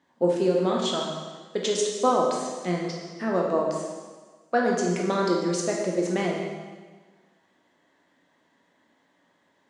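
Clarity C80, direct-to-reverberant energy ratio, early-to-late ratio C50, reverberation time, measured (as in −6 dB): 3.5 dB, −2.0 dB, 1.5 dB, 1.4 s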